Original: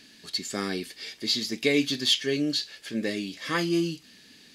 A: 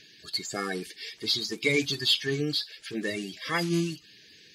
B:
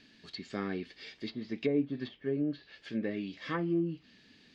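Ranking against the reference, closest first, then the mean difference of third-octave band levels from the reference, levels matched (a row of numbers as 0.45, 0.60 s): A, B; 3.5, 7.0 dB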